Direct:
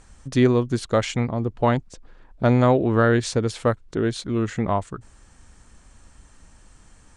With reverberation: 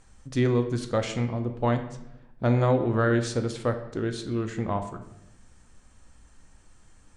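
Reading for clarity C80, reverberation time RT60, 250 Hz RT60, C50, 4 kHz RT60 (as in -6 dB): 12.5 dB, 0.85 s, 1.2 s, 10.0 dB, 0.65 s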